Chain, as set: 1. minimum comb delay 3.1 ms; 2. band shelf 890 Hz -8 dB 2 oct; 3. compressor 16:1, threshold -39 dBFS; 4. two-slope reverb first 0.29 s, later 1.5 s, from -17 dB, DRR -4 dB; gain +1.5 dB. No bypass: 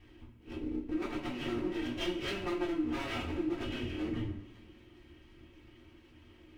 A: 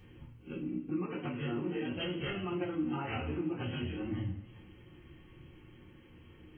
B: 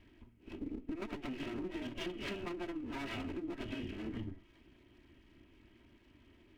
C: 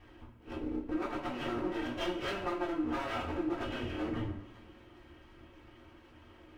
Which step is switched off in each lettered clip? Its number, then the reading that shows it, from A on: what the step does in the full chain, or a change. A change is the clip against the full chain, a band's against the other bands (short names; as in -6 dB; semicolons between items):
1, 125 Hz band +5.5 dB; 4, momentary loudness spread change -5 LU; 2, 1 kHz band +6.5 dB